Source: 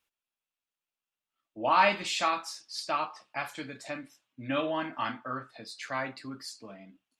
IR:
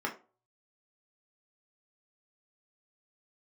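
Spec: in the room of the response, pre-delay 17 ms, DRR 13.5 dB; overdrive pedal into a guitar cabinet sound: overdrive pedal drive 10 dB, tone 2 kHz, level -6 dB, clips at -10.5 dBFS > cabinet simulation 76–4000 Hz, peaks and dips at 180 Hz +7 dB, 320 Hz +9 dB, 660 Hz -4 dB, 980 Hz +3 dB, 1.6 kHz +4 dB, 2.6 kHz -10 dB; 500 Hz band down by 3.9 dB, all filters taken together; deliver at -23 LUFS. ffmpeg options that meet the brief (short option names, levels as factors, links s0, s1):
-filter_complex "[0:a]equalizer=f=500:t=o:g=-3.5,asplit=2[s0][s1];[1:a]atrim=start_sample=2205,adelay=17[s2];[s1][s2]afir=irnorm=-1:irlink=0,volume=0.106[s3];[s0][s3]amix=inputs=2:normalize=0,asplit=2[s4][s5];[s5]highpass=f=720:p=1,volume=3.16,asoftclip=type=tanh:threshold=0.299[s6];[s4][s6]amix=inputs=2:normalize=0,lowpass=f=2000:p=1,volume=0.501,highpass=76,equalizer=f=180:t=q:w=4:g=7,equalizer=f=320:t=q:w=4:g=9,equalizer=f=660:t=q:w=4:g=-4,equalizer=f=980:t=q:w=4:g=3,equalizer=f=1600:t=q:w=4:g=4,equalizer=f=2600:t=q:w=4:g=-10,lowpass=f=4000:w=0.5412,lowpass=f=4000:w=1.3066,volume=1.88"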